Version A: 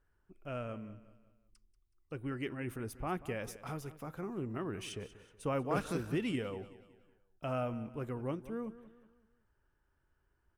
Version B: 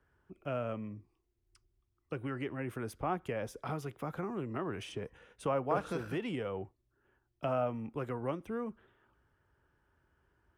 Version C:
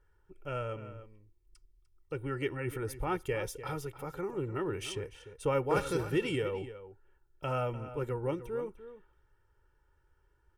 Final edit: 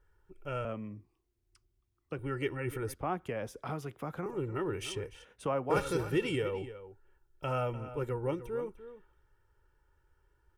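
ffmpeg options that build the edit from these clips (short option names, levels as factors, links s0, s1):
-filter_complex "[1:a]asplit=3[s0][s1][s2];[2:a]asplit=4[s3][s4][s5][s6];[s3]atrim=end=0.652[s7];[s0]atrim=start=0.648:end=2.192[s8];[s4]atrim=start=2.188:end=2.942[s9];[s1]atrim=start=2.938:end=4.262[s10];[s5]atrim=start=4.258:end=5.252[s11];[s2]atrim=start=5.248:end=5.702[s12];[s6]atrim=start=5.698[s13];[s7][s8]acrossfade=d=0.004:c1=hsin:c2=hsin[s14];[s14][s9]acrossfade=d=0.004:c1=hsin:c2=hsin[s15];[s15][s10]acrossfade=d=0.004:c1=hsin:c2=hsin[s16];[s16][s11]acrossfade=d=0.004:c1=hsin:c2=hsin[s17];[s17][s12]acrossfade=d=0.004:c1=hsin:c2=hsin[s18];[s18][s13]acrossfade=d=0.004:c1=hsin:c2=hsin"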